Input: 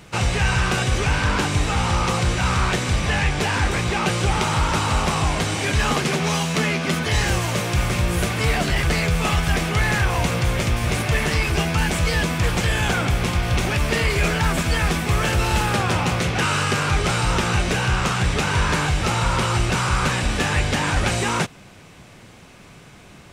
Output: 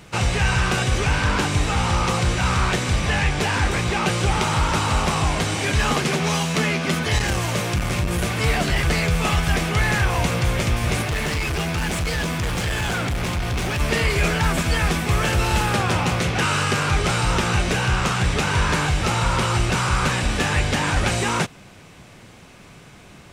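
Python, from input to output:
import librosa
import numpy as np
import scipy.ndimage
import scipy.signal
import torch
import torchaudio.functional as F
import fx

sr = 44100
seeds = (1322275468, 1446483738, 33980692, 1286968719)

y = fx.transformer_sat(x, sr, knee_hz=160.0, at=(7.18, 8.42))
y = fx.clip_hard(y, sr, threshold_db=-20.5, at=(11.04, 13.8))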